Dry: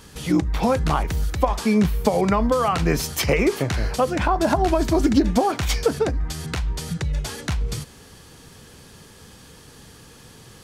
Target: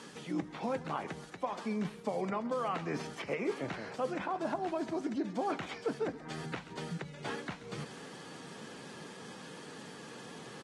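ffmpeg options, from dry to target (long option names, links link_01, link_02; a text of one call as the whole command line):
ffmpeg -i in.wav -filter_complex "[0:a]areverse,acompressor=threshold=-31dB:ratio=10,areverse,lowpass=frequency=9600:width=0.5412,lowpass=frequency=9600:width=1.3066,aecho=1:1:132|264|396:0.126|0.0516|0.0212,acrossover=split=2800[link_01][link_02];[link_02]acompressor=threshold=-55dB:ratio=4:attack=1:release=60[link_03];[link_01][link_03]amix=inputs=2:normalize=0,highpass=frequency=170:width=0.5412,highpass=frequency=170:width=1.3066" -ar 48000 -c:a aac -b:a 32k out.aac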